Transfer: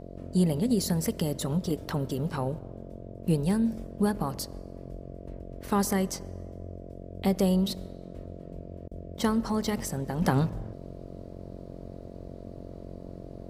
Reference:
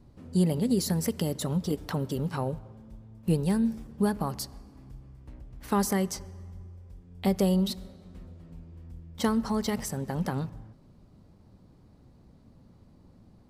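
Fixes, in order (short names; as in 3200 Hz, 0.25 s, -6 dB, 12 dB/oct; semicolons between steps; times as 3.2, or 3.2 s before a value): de-hum 45.3 Hz, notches 15; interpolate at 8.88, 32 ms; gain 0 dB, from 10.22 s -7 dB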